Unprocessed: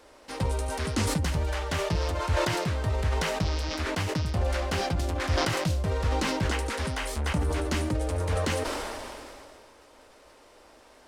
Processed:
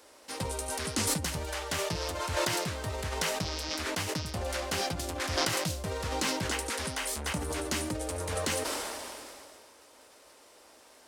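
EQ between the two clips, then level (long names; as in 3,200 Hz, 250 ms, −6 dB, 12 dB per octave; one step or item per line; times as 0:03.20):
high-pass filter 160 Hz 6 dB per octave
high-shelf EQ 5,000 Hz +11.5 dB
−3.5 dB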